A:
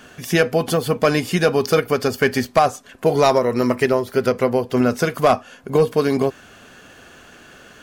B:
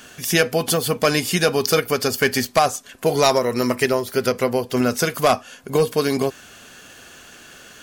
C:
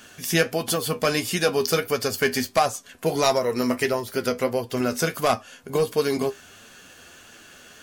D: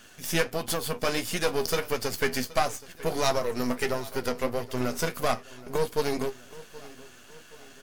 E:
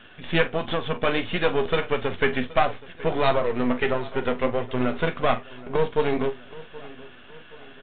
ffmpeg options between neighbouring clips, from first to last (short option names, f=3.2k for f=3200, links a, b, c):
-af "highshelf=f=3k:g=11.5,volume=-2.5dB"
-af "flanger=delay=8.8:depth=3.6:regen=53:speed=1.5:shape=sinusoidal"
-af "aeval=exprs='if(lt(val(0),0),0.251*val(0),val(0))':c=same,aecho=1:1:774|1548|2322|3096:0.106|0.0508|0.0244|0.0117,volume=-1.5dB"
-filter_complex "[0:a]asplit=2[a][b];[b]adelay=44,volume=-14dB[c];[a][c]amix=inputs=2:normalize=0,aresample=8000,aresample=44100,volume=4.5dB"